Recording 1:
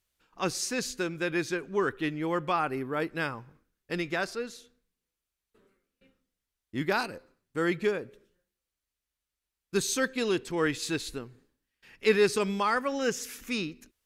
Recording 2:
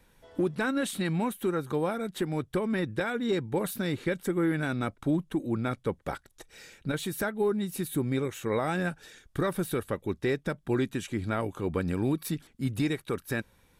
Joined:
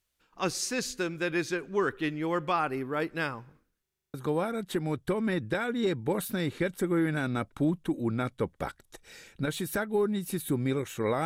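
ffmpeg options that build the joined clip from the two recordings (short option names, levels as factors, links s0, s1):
-filter_complex "[0:a]apad=whole_dur=11.25,atrim=end=11.25,asplit=8[s0][s1][s2][s3][s4][s5][s6][s7];[s0]atrim=end=3.862[s8];[s1]atrim=start=3.818:end=3.862[s9];[s2]atrim=start=3.818:end=3.862[s10];[s3]atrim=start=3.818:end=3.862[s11];[s4]atrim=start=3.818:end=3.862[s12];[s5]atrim=start=3.818:end=3.862[s13];[s6]atrim=start=3.818:end=3.862[s14];[s7]atrim=start=3.818:end=3.862[s15];[1:a]atrim=start=1.598:end=8.71[s16];[s8][s9]acrossfade=d=0.004:c1=hsin:c2=hsin[s17];[s17][s10]acrossfade=d=0.004:c1=hsin:c2=hsin[s18];[s18][s11]acrossfade=d=0.004:c1=hsin:c2=hsin[s19];[s19][s12]acrossfade=d=0.004:c1=hsin:c2=hsin[s20];[s20][s13]acrossfade=d=0.004:c1=hsin:c2=hsin[s21];[s21][s14]acrossfade=d=0.004:c1=hsin:c2=hsin[s22];[s22][s15]acrossfade=d=0.004:c1=hsin:c2=hsin[s23];[s23][s16]acrossfade=d=0.004:c1=hsin:c2=hsin"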